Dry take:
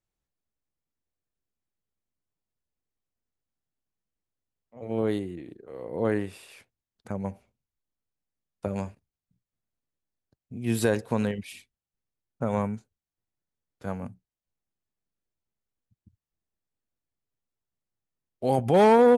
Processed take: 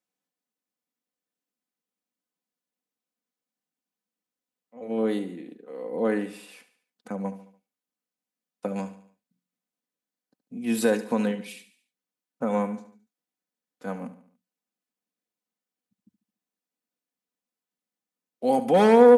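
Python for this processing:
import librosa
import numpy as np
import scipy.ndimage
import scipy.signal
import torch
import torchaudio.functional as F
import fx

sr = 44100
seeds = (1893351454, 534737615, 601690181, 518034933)

p1 = scipy.signal.sosfilt(scipy.signal.butter(4, 170.0, 'highpass', fs=sr, output='sos'), x)
p2 = p1 + 0.56 * np.pad(p1, (int(4.0 * sr / 1000.0), 0))[:len(p1)]
y = p2 + fx.echo_feedback(p2, sr, ms=72, feedback_pct=47, wet_db=-14, dry=0)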